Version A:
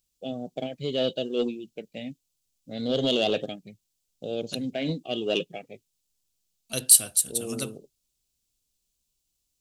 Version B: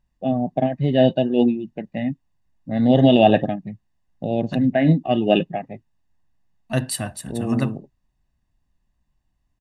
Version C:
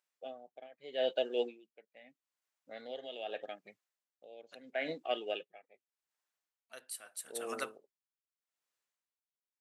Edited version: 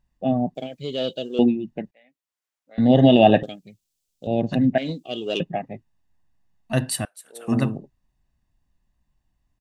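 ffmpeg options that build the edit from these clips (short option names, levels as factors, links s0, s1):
-filter_complex "[0:a]asplit=3[s0][s1][s2];[2:a]asplit=2[s3][s4];[1:a]asplit=6[s5][s6][s7][s8][s9][s10];[s5]atrim=end=0.552[s11];[s0]atrim=start=0.548:end=1.392[s12];[s6]atrim=start=1.388:end=1.912[s13];[s3]atrim=start=1.908:end=2.782[s14];[s7]atrim=start=2.778:end=3.432[s15];[s1]atrim=start=3.428:end=4.272[s16];[s8]atrim=start=4.268:end=4.782[s17];[s2]atrim=start=4.778:end=5.402[s18];[s9]atrim=start=5.398:end=7.052[s19];[s4]atrim=start=7.048:end=7.482[s20];[s10]atrim=start=7.478[s21];[s11][s12]acrossfade=d=0.004:c1=hsin:c2=hsin[s22];[s22][s13]acrossfade=d=0.004:c1=hsin:c2=hsin[s23];[s23][s14]acrossfade=d=0.004:c1=hsin:c2=hsin[s24];[s24][s15]acrossfade=d=0.004:c1=hsin:c2=hsin[s25];[s25][s16]acrossfade=d=0.004:c1=hsin:c2=hsin[s26];[s26][s17]acrossfade=d=0.004:c1=hsin:c2=hsin[s27];[s27][s18]acrossfade=d=0.004:c1=hsin:c2=hsin[s28];[s28][s19]acrossfade=d=0.004:c1=hsin:c2=hsin[s29];[s29][s20]acrossfade=d=0.004:c1=hsin:c2=hsin[s30];[s30][s21]acrossfade=d=0.004:c1=hsin:c2=hsin"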